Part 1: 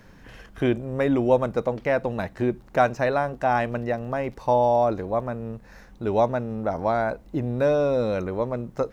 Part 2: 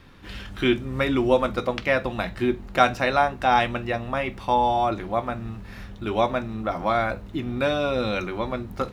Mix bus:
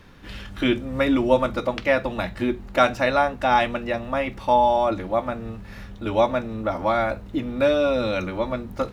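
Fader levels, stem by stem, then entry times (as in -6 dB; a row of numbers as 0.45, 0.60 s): -3.5, -0.5 dB; 0.00, 0.00 s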